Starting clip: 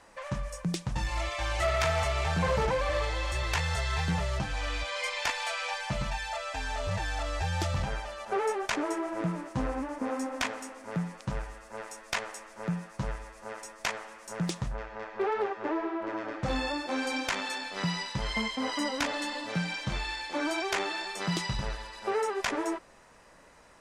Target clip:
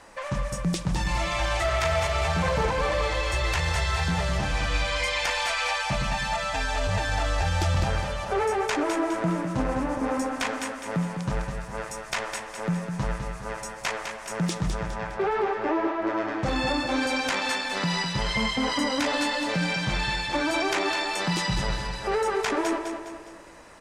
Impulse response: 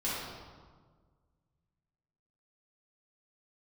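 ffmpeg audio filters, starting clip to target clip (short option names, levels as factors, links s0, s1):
-filter_complex "[0:a]alimiter=level_in=1.06:limit=0.0631:level=0:latency=1:release=23,volume=0.944,aecho=1:1:205|410|615|820|1025:0.447|0.197|0.0865|0.0381|0.0167,asplit=2[s0][s1];[1:a]atrim=start_sample=2205[s2];[s1][s2]afir=irnorm=-1:irlink=0,volume=0.075[s3];[s0][s3]amix=inputs=2:normalize=0,volume=2"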